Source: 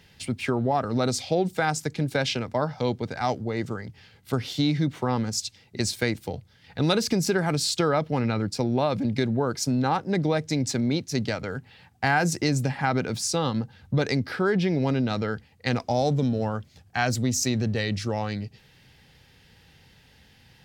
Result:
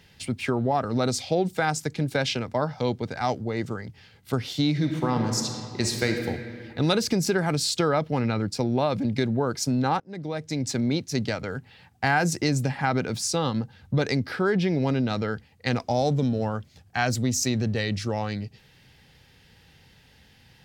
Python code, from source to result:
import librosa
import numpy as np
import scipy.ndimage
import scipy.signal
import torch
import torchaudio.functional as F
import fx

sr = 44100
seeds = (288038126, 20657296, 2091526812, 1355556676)

y = fx.reverb_throw(x, sr, start_s=4.7, length_s=1.57, rt60_s=2.3, drr_db=3.0)
y = fx.edit(y, sr, fx.fade_in_from(start_s=10.0, length_s=0.81, floor_db=-23.0), tone=tone)